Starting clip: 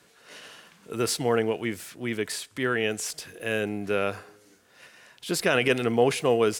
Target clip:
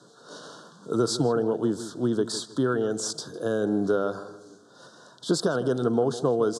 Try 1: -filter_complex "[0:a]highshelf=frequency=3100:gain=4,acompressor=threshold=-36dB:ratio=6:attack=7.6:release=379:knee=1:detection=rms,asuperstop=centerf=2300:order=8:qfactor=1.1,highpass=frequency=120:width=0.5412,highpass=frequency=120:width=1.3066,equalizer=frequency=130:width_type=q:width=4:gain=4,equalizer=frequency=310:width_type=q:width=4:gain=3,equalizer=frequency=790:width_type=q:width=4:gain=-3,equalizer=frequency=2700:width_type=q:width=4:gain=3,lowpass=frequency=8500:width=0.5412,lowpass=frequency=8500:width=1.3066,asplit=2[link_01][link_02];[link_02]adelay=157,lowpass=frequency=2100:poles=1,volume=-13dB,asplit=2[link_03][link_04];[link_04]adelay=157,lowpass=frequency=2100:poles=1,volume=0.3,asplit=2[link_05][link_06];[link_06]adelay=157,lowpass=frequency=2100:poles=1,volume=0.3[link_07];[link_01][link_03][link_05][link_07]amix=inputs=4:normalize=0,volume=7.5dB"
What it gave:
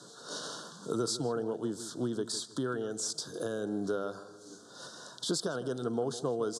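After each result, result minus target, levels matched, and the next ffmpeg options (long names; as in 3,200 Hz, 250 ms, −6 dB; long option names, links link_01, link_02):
downward compressor: peak gain reduction +9 dB; 8,000 Hz band +6.0 dB
-filter_complex "[0:a]highshelf=frequency=3100:gain=4,acompressor=threshold=-25.5dB:ratio=6:attack=7.6:release=379:knee=1:detection=rms,asuperstop=centerf=2300:order=8:qfactor=1.1,highpass=frequency=120:width=0.5412,highpass=frequency=120:width=1.3066,equalizer=frequency=130:width_type=q:width=4:gain=4,equalizer=frequency=310:width_type=q:width=4:gain=3,equalizer=frequency=790:width_type=q:width=4:gain=-3,equalizer=frequency=2700:width_type=q:width=4:gain=3,lowpass=frequency=8500:width=0.5412,lowpass=frequency=8500:width=1.3066,asplit=2[link_01][link_02];[link_02]adelay=157,lowpass=frequency=2100:poles=1,volume=-13dB,asplit=2[link_03][link_04];[link_04]adelay=157,lowpass=frequency=2100:poles=1,volume=0.3,asplit=2[link_05][link_06];[link_06]adelay=157,lowpass=frequency=2100:poles=1,volume=0.3[link_07];[link_01][link_03][link_05][link_07]amix=inputs=4:normalize=0,volume=7.5dB"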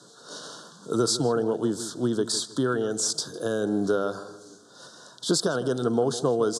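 8,000 Hz band +5.5 dB
-filter_complex "[0:a]highshelf=frequency=3100:gain=-5,acompressor=threshold=-25.5dB:ratio=6:attack=7.6:release=379:knee=1:detection=rms,asuperstop=centerf=2300:order=8:qfactor=1.1,highpass=frequency=120:width=0.5412,highpass=frequency=120:width=1.3066,equalizer=frequency=130:width_type=q:width=4:gain=4,equalizer=frequency=310:width_type=q:width=4:gain=3,equalizer=frequency=790:width_type=q:width=4:gain=-3,equalizer=frequency=2700:width_type=q:width=4:gain=3,lowpass=frequency=8500:width=0.5412,lowpass=frequency=8500:width=1.3066,asplit=2[link_01][link_02];[link_02]adelay=157,lowpass=frequency=2100:poles=1,volume=-13dB,asplit=2[link_03][link_04];[link_04]adelay=157,lowpass=frequency=2100:poles=1,volume=0.3,asplit=2[link_05][link_06];[link_06]adelay=157,lowpass=frequency=2100:poles=1,volume=0.3[link_07];[link_01][link_03][link_05][link_07]amix=inputs=4:normalize=0,volume=7.5dB"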